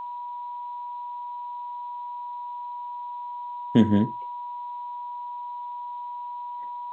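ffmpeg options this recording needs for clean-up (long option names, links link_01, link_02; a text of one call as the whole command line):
ffmpeg -i in.wav -af "bandreject=frequency=970:width=30,afftdn=noise_reduction=30:noise_floor=-35" out.wav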